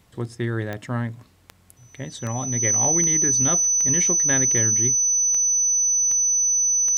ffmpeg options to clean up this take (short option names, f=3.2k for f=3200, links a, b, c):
-af "adeclick=t=4,bandreject=f=6k:w=30"